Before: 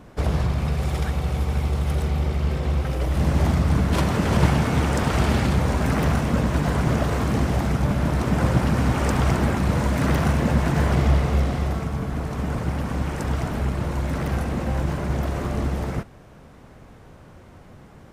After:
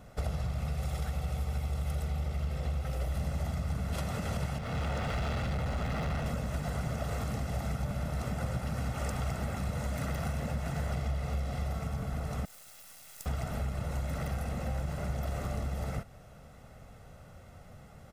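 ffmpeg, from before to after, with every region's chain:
ffmpeg -i in.wav -filter_complex "[0:a]asettb=1/sr,asplit=3[link_01][link_02][link_03];[link_01]atrim=end=4.584[link_04];[link_02]atrim=start=4.58:end=6.26,asetpts=PTS-STARTPTS,afade=type=in:duration=0.004:curve=qsin,afade=type=out:start_time=1.676:duration=0.004:curve=qsin,acrossover=split=4600[link_05][link_06];[link_06]acompressor=threshold=-55dB:ratio=4:attack=1:release=60[link_07];[link_05][link_07]amix=inputs=2:normalize=0,asoftclip=type=hard:threshold=-22.5dB[link_08];[link_03]atrim=start=6.256[link_09];[link_04][link_08]acrossfade=duration=0.004:curve1=hsin:curve2=qsin[link_10];[link_10][link_09]acrossfade=duration=0.004:curve1=qsin:curve2=hsin,asettb=1/sr,asplit=3[link_11][link_12][link_13];[link_11]atrim=end=12.454[link_14];[link_12]atrim=start=12.45:end=13.26,asetpts=PTS-STARTPTS,afade=type=in:duration=0.004:curve=qsin,afade=type=out:start_time=0.806:duration=0.004:curve=qsin,aderivative,acrusher=bits=5:dc=4:mix=0:aa=0.000001[link_15];[link_13]atrim=start=13.256[link_16];[link_14][link_15]acrossfade=duration=0.004:curve1=hsin:curve2=qsin[link_17];[link_17][link_16]acrossfade=duration=0.004:curve1=qsin:curve2=hsin,acompressor=threshold=-25dB:ratio=6,highshelf=frequency=5900:gain=7,aecho=1:1:1.5:0.57,volume=-7.5dB" out.wav

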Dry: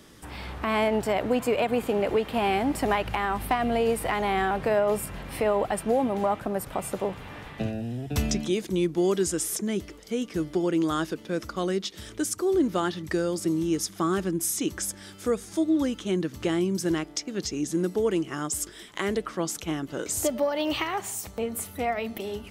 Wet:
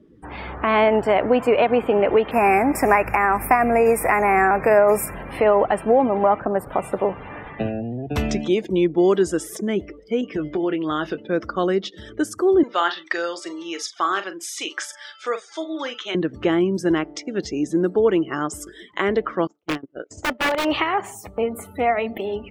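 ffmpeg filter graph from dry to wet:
ffmpeg -i in.wav -filter_complex "[0:a]asettb=1/sr,asplit=3[link_01][link_02][link_03];[link_01]atrim=end=2.314[link_04];[link_02]atrim=start=2.31:end=5.14,asetpts=PTS-STARTPTS,afade=type=in:duration=0.004:curve=qsin,afade=type=out:start_time=2.826:duration=0.004:curve=qsin,asuperstop=centerf=3600:order=12:qfactor=1.6,aemphasis=mode=production:type=75kf[link_05];[link_03]atrim=start=5.136[link_06];[link_04][link_05]acrossfade=duration=0.004:curve1=hsin:curve2=qsin[link_07];[link_07][link_06]acrossfade=duration=0.004:curve1=qsin:curve2=hsin,asettb=1/sr,asplit=3[link_08][link_09][link_10];[link_08]atrim=end=10.214[link_11];[link_09]atrim=start=10.21:end=11.2,asetpts=PTS-STARTPTS,afade=type=in:duration=0.004:curve=qsin,afade=type=out:start_time=0.986:duration=0.004:curve=qsin,adynamicequalizer=threshold=0.00447:dfrequency=2800:dqfactor=0.95:tfrequency=2800:tqfactor=0.95:attack=5:release=100:ratio=0.375:range=2.5:mode=boostabove:tftype=bell,acompressor=threshold=-26dB:ratio=5:attack=3.2:release=140:knee=1:detection=peak,asplit=2[link_12][link_13];[link_13]adelay=20,volume=-10dB[link_14];[link_12][link_14]amix=inputs=2:normalize=0,atrim=end_sample=43659[link_15];[link_10]atrim=start=11.196[link_16];[link_11][link_15]acrossfade=duration=0.004:curve1=hsin:curve2=qsin[link_17];[link_17][link_16]acrossfade=duration=0.004:curve1=qsin:curve2=hsin,asettb=1/sr,asplit=3[link_18][link_19][link_20];[link_18]atrim=end=12.634[link_21];[link_19]atrim=start=12.63:end=16.15,asetpts=PTS-STARTPTS,afade=type=in:duration=0.004:curve=qsin,afade=type=out:start_time=3.516:duration=0.004:curve=qsin,highpass=740,lowpass=5500,highshelf=frequency=2600:gain=10,asplit=2[link_22][link_23];[link_23]adelay=41,volume=-9.5dB[link_24];[link_22][link_24]amix=inputs=2:normalize=0,atrim=end_sample=155232[link_25];[link_20]atrim=start=16.146[link_26];[link_21][link_25]acrossfade=duration=0.004:curve1=hsin:curve2=qsin[link_27];[link_27][link_26]acrossfade=duration=0.004:curve1=qsin:curve2=hsin,asettb=1/sr,asplit=3[link_28][link_29][link_30];[link_28]atrim=end=19.474[link_31];[link_29]atrim=start=19.47:end=20.65,asetpts=PTS-STARTPTS,afade=type=in:duration=0.004:curve=qsin,afade=type=out:start_time=1.176:duration=0.004:curve=qsin,agate=range=-25dB:threshold=-30dB:ratio=16:release=100:detection=peak,lowpass=frequency=6500:width=0.5412,lowpass=frequency=6500:width=1.3066,aeval=exprs='(mod(12.6*val(0)+1,2)-1)/12.6':channel_layout=same[link_32];[link_30]atrim=start=20.646[link_33];[link_31][link_32]acrossfade=duration=0.004:curve1=hsin:curve2=qsin[link_34];[link_34][link_33]acrossfade=duration=0.004:curve1=qsin:curve2=hsin,afftdn=noise_reduction=25:noise_floor=-45,bass=frequency=250:gain=-7,treble=frequency=4000:gain=-15,volume=8.5dB" out.wav

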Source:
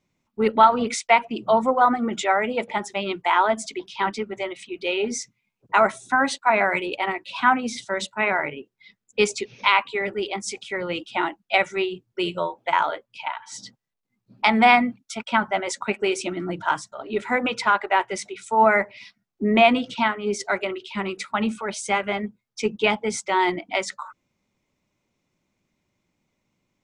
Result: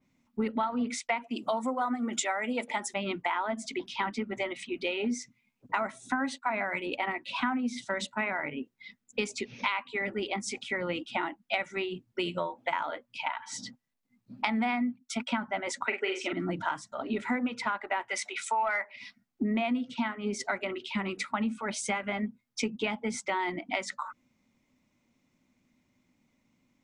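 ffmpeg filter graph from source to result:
ffmpeg -i in.wav -filter_complex "[0:a]asettb=1/sr,asplit=3[link_01][link_02][link_03];[link_01]atrim=end=1.244[link_04];[link_02]atrim=start=1.24:end=2.94,asetpts=PTS-STARTPTS,afade=type=in:duration=0.004:curve=qsin,afade=type=out:start_time=1.696:duration=0.004:curve=qsin,highpass=270,equalizer=frequency=9100:width_type=o:width=1.6:gain=14.5[link_05];[link_03]atrim=start=2.936[link_06];[link_04][link_05]acrossfade=duration=0.004:curve1=hsin:curve2=qsin[link_07];[link_07][link_06]acrossfade=duration=0.004:curve1=qsin:curve2=hsin,asettb=1/sr,asplit=3[link_08][link_09][link_10];[link_08]atrim=end=15.874[link_11];[link_09]atrim=start=15.87:end=16.33,asetpts=PTS-STARTPTS,afade=type=in:duration=0.004:curve=qsin,afade=type=out:start_time=0.456:duration=0.004:curve=qsin,highpass=frequency=320:width=0.5412,highpass=frequency=320:width=1.3066,equalizer=frequency=420:width_type=q:width=4:gain=5,equalizer=frequency=1400:width_type=q:width=4:gain=6,equalizer=frequency=2000:width_type=q:width=4:gain=9,equalizer=frequency=3100:width_type=q:width=4:gain=6,lowpass=frequency=7500:width=0.5412,lowpass=frequency=7500:width=1.3066,asplit=2[link_12][link_13];[link_13]adelay=42,volume=-5.5dB[link_14];[link_12][link_14]amix=inputs=2:normalize=0,atrim=end_sample=20286[link_15];[link_10]atrim=start=16.326[link_16];[link_11][link_15]acrossfade=duration=0.004:curve1=hsin:curve2=qsin[link_17];[link_17][link_16]acrossfade=duration=0.004:curve1=qsin:curve2=hsin,asettb=1/sr,asplit=3[link_18][link_19][link_20];[link_18]atrim=end=18.084[link_21];[link_19]atrim=start=18.08:end=18.96,asetpts=PTS-STARTPTS,afade=type=in:duration=0.004:curve=qsin,afade=type=out:start_time=0.876:duration=0.004:curve=qsin,highpass=790,acontrast=86[link_22];[link_20]atrim=start=18.956[link_23];[link_21][link_22]acrossfade=duration=0.004:curve1=hsin:curve2=qsin[link_24];[link_24][link_23]acrossfade=duration=0.004:curve1=qsin:curve2=hsin,equalizer=frequency=250:width_type=o:width=0.33:gain=12,equalizer=frequency=400:width_type=o:width=0.33:gain=-5,equalizer=frequency=2000:width_type=o:width=0.33:gain=3,acompressor=threshold=-28dB:ratio=6,adynamicequalizer=threshold=0.00631:dfrequency=3200:dqfactor=0.7:tfrequency=3200:tqfactor=0.7:attack=5:release=100:ratio=0.375:range=2.5:mode=cutabove:tftype=highshelf" out.wav

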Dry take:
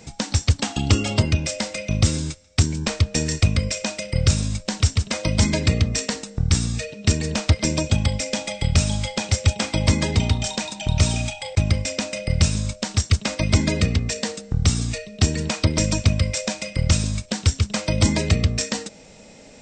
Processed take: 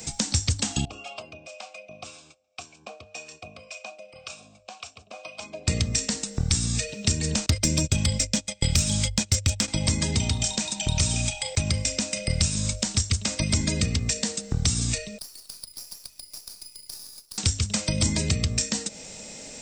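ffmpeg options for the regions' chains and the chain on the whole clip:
ffmpeg -i in.wav -filter_complex "[0:a]asettb=1/sr,asplit=3[link_01][link_02][link_03];[link_01]atrim=end=0.854[link_04];[link_02]atrim=start=0.85:end=5.68,asetpts=PTS-STARTPTS,afade=type=in:duration=0.004:curve=qsin,afade=type=out:start_time=4.826:duration=0.004:curve=qsin,acrossover=split=710[link_05][link_06];[link_05]aeval=exprs='val(0)*(1-0.7/2+0.7/2*cos(2*PI*1.9*n/s))':channel_layout=same[link_07];[link_06]aeval=exprs='val(0)*(1-0.7/2-0.7/2*cos(2*PI*1.9*n/s))':channel_layout=same[link_08];[link_07][link_08]amix=inputs=2:normalize=0,asplit=3[link_09][link_10][link_11];[link_09]bandpass=frequency=730:width_type=q:width=8,volume=0dB[link_12];[link_10]bandpass=frequency=1090:width_type=q:width=8,volume=-6dB[link_13];[link_11]bandpass=frequency=2440:width_type=q:width=8,volume=-9dB[link_14];[link_12][link_13][link_14]amix=inputs=3:normalize=0[link_15];[link_03]atrim=start=5.676[link_16];[link_04][link_15]acrossfade=duration=0.004:curve1=hsin:curve2=qsin[link_17];[link_17][link_16]acrossfade=duration=0.004:curve1=qsin:curve2=hsin,asettb=1/sr,asplit=3[link_18][link_19][link_20];[link_18]atrim=end=7.464[link_21];[link_19]atrim=start=7.46:end=9.68,asetpts=PTS-STARTPTS,afade=type=in:duration=0.004:curve=qsin,afade=type=out:start_time=2.216:duration=0.004:curve=qsin,agate=range=-28dB:threshold=-27dB:ratio=16:release=100:detection=peak,equalizer=frequency=820:width_type=o:width=0.42:gain=-5.5,acontrast=46[link_22];[link_20]atrim=start=9.676[link_23];[link_21][link_22]acrossfade=duration=0.004:curve1=hsin:curve2=qsin[link_24];[link_24][link_23]acrossfade=duration=0.004:curve1=qsin:curve2=hsin,asettb=1/sr,asplit=3[link_25][link_26][link_27];[link_25]atrim=end=15.184[link_28];[link_26]atrim=start=15.18:end=17.38,asetpts=PTS-STARTPTS,afade=type=in:duration=0.004:curve=qsin,afade=type=out:start_time=2.196:duration=0.004:curve=qsin,bandpass=frequency=4800:width_type=q:width=8.4,aeval=exprs='max(val(0),0)':channel_layout=same,acompressor=threshold=-52dB:ratio=2:attack=3.2:release=140:knee=1:detection=peak[link_29];[link_27]atrim=start=17.376[link_30];[link_28][link_29]acrossfade=duration=0.004:curve1=hsin:curve2=qsin[link_31];[link_31][link_30]acrossfade=duration=0.004:curve1=qsin:curve2=hsin,aemphasis=mode=production:type=75fm,bandreject=frequency=50:width_type=h:width=6,bandreject=frequency=100:width_type=h:width=6,acrossover=split=250|5700[link_32][link_33][link_34];[link_32]acompressor=threshold=-24dB:ratio=4[link_35];[link_33]acompressor=threshold=-32dB:ratio=4[link_36];[link_34]acompressor=threshold=-32dB:ratio=4[link_37];[link_35][link_36][link_37]amix=inputs=3:normalize=0,volume=1.5dB" out.wav

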